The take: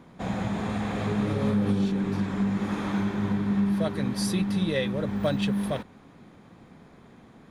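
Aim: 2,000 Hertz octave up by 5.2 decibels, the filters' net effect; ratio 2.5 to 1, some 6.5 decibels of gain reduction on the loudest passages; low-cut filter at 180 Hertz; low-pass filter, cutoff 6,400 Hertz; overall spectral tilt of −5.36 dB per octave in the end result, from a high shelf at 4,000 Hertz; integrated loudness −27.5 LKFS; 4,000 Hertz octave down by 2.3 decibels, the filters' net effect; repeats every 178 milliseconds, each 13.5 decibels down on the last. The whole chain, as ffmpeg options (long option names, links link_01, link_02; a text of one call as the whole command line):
ffmpeg -i in.wav -af "highpass=180,lowpass=6400,equalizer=frequency=2000:width_type=o:gain=7,highshelf=frequency=4000:gain=4.5,equalizer=frequency=4000:width_type=o:gain=-7,acompressor=threshold=-32dB:ratio=2.5,aecho=1:1:178|356:0.211|0.0444,volume=6dB" out.wav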